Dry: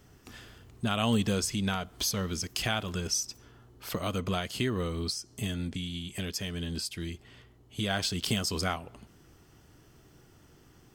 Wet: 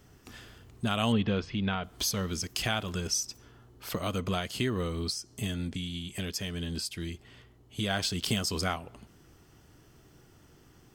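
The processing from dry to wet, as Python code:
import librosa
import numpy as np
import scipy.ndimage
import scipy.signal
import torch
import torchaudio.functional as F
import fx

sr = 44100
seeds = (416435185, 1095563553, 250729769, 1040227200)

y = fx.lowpass(x, sr, hz=3500.0, slope=24, at=(1.12, 1.84))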